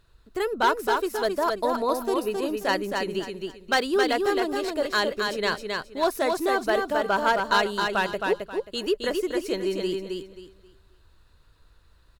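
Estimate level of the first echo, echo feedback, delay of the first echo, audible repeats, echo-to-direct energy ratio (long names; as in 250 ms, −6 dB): −4.0 dB, 26%, 267 ms, 3, −3.5 dB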